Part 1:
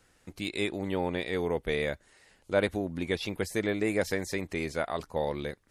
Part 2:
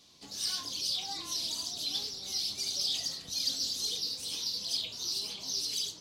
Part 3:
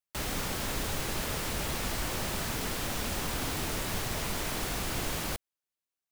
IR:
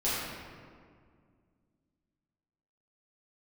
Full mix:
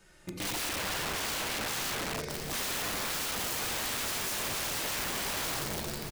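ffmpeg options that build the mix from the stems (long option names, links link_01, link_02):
-filter_complex "[0:a]acompressor=threshold=-34dB:ratio=2,asplit=2[link_01][link_02];[link_02]adelay=2.8,afreqshift=-0.54[link_03];[link_01][link_03]amix=inputs=2:normalize=1,volume=2.5dB,asplit=3[link_04][link_05][link_06];[link_05]volume=-4dB[link_07];[1:a]acompressor=threshold=-41dB:ratio=6,adelay=1850,volume=-6.5dB,asplit=2[link_08][link_09];[link_09]volume=-8dB[link_10];[2:a]adelay=2150,volume=-8.5dB,asplit=2[link_11][link_12];[link_12]volume=-18.5dB[link_13];[link_06]apad=whole_len=346514[link_14];[link_08][link_14]sidechaingate=range=-33dB:threshold=-57dB:ratio=16:detection=peak[link_15];[3:a]atrim=start_sample=2205[link_16];[link_07][link_10][link_13]amix=inputs=3:normalize=0[link_17];[link_17][link_16]afir=irnorm=-1:irlink=0[link_18];[link_04][link_15][link_11][link_18]amix=inputs=4:normalize=0,aeval=exprs='(mod(28.2*val(0)+1,2)-1)/28.2':channel_layout=same"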